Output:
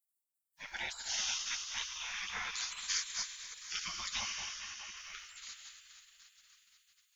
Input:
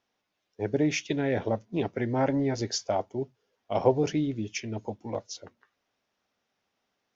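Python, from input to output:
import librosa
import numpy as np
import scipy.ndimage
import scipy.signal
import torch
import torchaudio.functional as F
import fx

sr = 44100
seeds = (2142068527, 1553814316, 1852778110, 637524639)

p1 = fx.sine_speech(x, sr, at=(4.2, 4.96))
p2 = fx.rev_plate(p1, sr, seeds[0], rt60_s=4.5, hf_ratio=0.9, predelay_ms=0, drr_db=4.5)
p3 = fx.spec_gate(p2, sr, threshold_db=-30, keep='weak')
p4 = fx.high_shelf(p3, sr, hz=2100.0, db=11.0)
p5 = p4 + fx.echo_feedback(p4, sr, ms=251, feedback_pct=33, wet_db=-16.0, dry=0)
y = F.gain(torch.from_numpy(p5), 3.5).numpy()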